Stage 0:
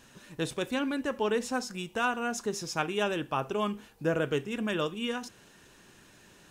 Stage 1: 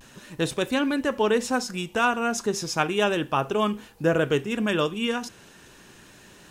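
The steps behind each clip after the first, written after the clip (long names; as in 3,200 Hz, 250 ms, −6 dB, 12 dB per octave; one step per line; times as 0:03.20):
pitch vibrato 0.34 Hz 26 cents
level +6.5 dB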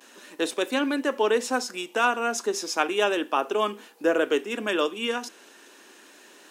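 Butterworth high-pass 260 Hz 36 dB per octave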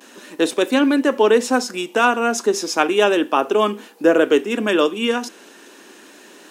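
low-shelf EQ 320 Hz +9 dB
level +5.5 dB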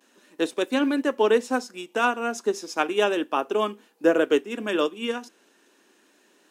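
expander for the loud parts 1.5 to 1, over −34 dBFS
level −4.5 dB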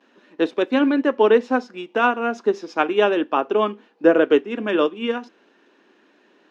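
high-frequency loss of the air 240 metres
level +5.5 dB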